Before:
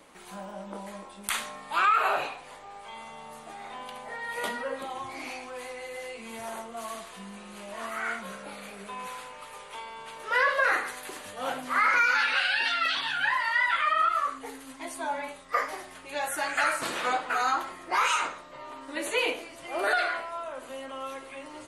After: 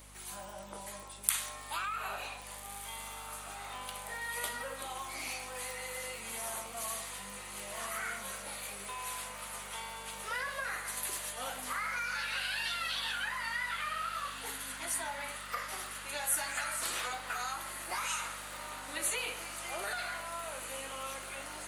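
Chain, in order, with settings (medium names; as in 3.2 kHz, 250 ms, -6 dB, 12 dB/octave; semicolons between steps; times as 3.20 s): crackle 27 per s -45 dBFS; compression, threshold -32 dBFS, peak gain reduction 12.5 dB; RIAA curve recording; hum 50 Hz, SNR 17 dB; on a send: echo that smears into a reverb 1600 ms, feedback 73%, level -11 dB; on the sum: trim -4.5 dB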